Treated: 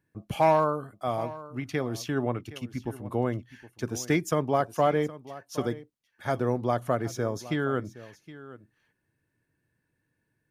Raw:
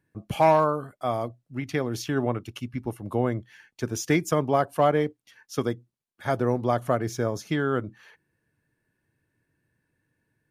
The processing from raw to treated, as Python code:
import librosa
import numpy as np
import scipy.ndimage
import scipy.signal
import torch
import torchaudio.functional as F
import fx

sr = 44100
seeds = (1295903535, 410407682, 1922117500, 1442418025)

y = x + 10.0 ** (-17.0 / 20.0) * np.pad(x, (int(767 * sr / 1000.0), 0))[:len(x)]
y = F.gain(torch.from_numpy(y), -2.5).numpy()